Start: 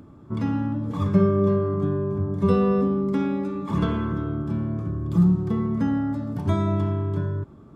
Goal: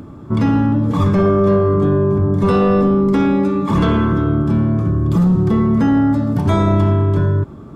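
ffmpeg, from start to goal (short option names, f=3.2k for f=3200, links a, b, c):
-af "apsyclip=21dB,volume=-9dB"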